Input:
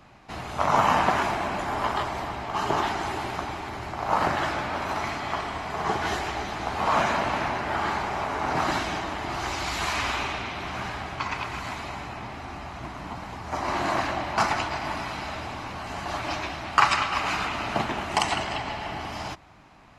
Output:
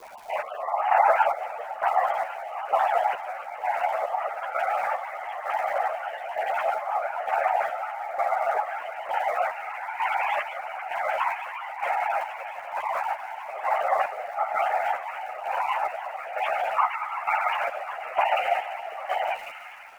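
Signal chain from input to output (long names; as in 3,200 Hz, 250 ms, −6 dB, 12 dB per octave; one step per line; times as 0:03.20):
three sine waves on the formant tracks
low-pass filter 2,500 Hz 12 dB per octave
notch filter 1,200 Hz, Q 15
in parallel at −0.5 dB: compressor whose output falls as the input rises −39 dBFS
on the sum: random phases in short frames
frequency shifter −68 Hz
surface crackle 250 per second −39 dBFS
square-wave tremolo 1.1 Hz, depth 65%, duty 45%
on a send: delay with a high-pass on its return 1,095 ms, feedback 63%, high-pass 1,600 Hz, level −10 dB
on the sum: string-ensemble chorus
level +6 dB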